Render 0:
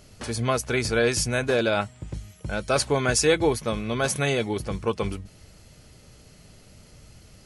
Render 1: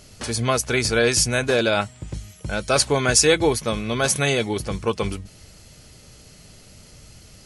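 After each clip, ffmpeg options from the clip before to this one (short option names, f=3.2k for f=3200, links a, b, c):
-af "equalizer=f=6.9k:w=0.41:g=5,volume=2.5dB"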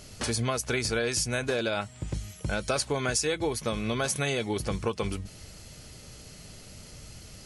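-af "acompressor=threshold=-26dB:ratio=5"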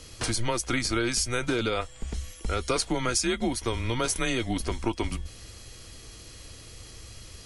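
-af "afreqshift=-120,aeval=exprs='val(0)+0.001*sin(2*PI*3300*n/s)':c=same,volume=1.5dB"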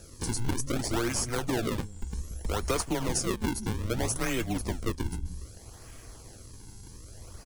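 -filter_complex "[0:a]acrossover=split=220|4800[a][b][c];[a]aecho=1:1:179:0.668[d];[b]acrusher=samples=41:mix=1:aa=0.000001:lfo=1:lforange=65.6:lforate=0.63[e];[d][e][c]amix=inputs=3:normalize=0,volume=-2dB"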